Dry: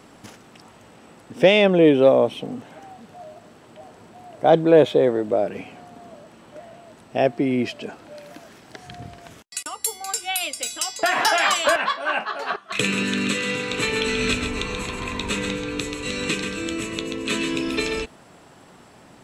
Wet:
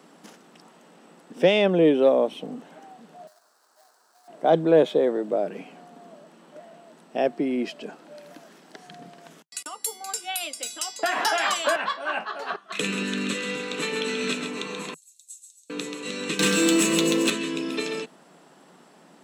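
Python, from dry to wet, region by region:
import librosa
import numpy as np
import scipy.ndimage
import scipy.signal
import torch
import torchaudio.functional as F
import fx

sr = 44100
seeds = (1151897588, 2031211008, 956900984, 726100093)

y = fx.chain(x, sr, fx.dead_time(dead_ms=0.2),
    fx.highpass(hz=1300.0, slope=12),
    fx.band_shelf(hz=2600.0, db=-14.5, octaves=1.1), at=(3.27, 4.28))
y = fx.chain(y, sr, fx.cheby2_highpass(hz=1400.0, order=4, stop_db=80),
    fx.comb(ms=5.8, depth=0.44), at=(14.94, 15.7))
y = fx.chain(y, sr, fx.high_shelf(hz=6100.0, db=10.5),
    fx.comb(ms=5.8, depth=0.35),
    fx.leveller(passes=3), at=(16.39, 17.3))
y = scipy.signal.sosfilt(scipy.signal.ellip(4, 1.0, 40, 160.0, 'highpass', fs=sr, output='sos'), y)
y = fx.peak_eq(y, sr, hz=2300.0, db=-3.0, octaves=0.35)
y = y * librosa.db_to_amplitude(-3.5)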